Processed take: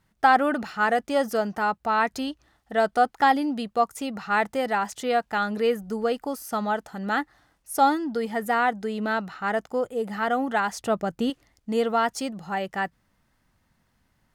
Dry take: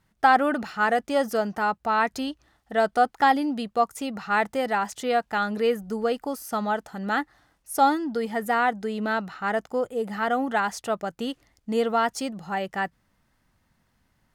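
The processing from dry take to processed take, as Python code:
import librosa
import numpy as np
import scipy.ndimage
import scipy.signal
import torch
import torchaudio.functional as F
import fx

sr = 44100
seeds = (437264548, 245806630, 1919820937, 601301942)

y = fx.low_shelf(x, sr, hz=390.0, db=8.0, at=(10.79, 11.3))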